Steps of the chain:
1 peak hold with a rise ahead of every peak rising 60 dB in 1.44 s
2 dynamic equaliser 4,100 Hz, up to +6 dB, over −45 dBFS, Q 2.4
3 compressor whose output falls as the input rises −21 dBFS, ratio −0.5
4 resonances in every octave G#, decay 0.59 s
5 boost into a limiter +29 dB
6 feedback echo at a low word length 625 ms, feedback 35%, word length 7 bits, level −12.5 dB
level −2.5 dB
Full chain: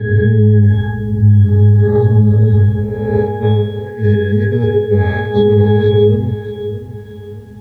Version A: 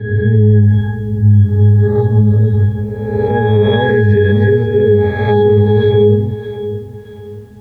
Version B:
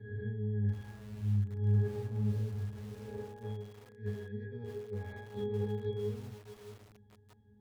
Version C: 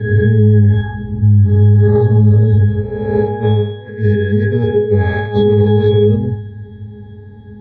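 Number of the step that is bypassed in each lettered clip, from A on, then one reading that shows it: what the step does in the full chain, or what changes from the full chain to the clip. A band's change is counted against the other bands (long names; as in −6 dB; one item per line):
3, change in momentary loudness spread −1 LU
5, change in crest factor +5.5 dB
6, change in crest factor −1.5 dB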